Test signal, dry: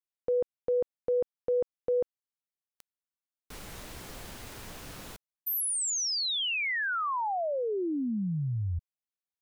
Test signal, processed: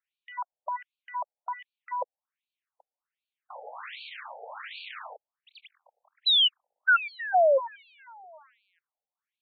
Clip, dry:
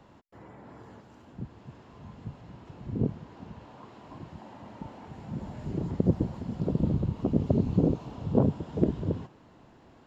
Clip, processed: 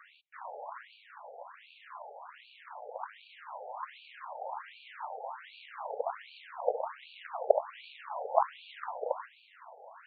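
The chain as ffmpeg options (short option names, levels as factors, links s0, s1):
-filter_complex "[0:a]aeval=exprs='if(lt(val(0),0),0.447*val(0),val(0))':c=same,asplit=2[s0][s1];[s1]highpass=f=720:p=1,volume=5.62,asoftclip=type=tanh:threshold=0.335[s2];[s0][s2]amix=inputs=2:normalize=0,lowpass=f=2600:p=1,volume=0.501,afftfilt=real='re*between(b*sr/1024,600*pow(3300/600,0.5+0.5*sin(2*PI*1.3*pts/sr))/1.41,600*pow(3300/600,0.5+0.5*sin(2*PI*1.3*pts/sr))*1.41)':imag='im*between(b*sr/1024,600*pow(3300/600,0.5+0.5*sin(2*PI*1.3*pts/sr))/1.41,600*pow(3300/600,0.5+0.5*sin(2*PI*1.3*pts/sr))*1.41)':win_size=1024:overlap=0.75,volume=2.37"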